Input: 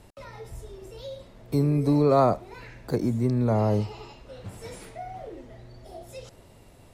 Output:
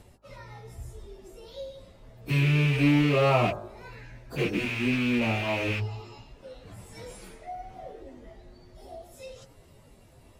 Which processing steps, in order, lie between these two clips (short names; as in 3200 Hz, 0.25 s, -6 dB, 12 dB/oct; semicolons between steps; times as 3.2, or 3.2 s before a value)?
rattling part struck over -29 dBFS, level -16 dBFS; low shelf 150 Hz +2.5 dB; de-hum 53.47 Hz, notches 32; plain phase-vocoder stretch 1.5×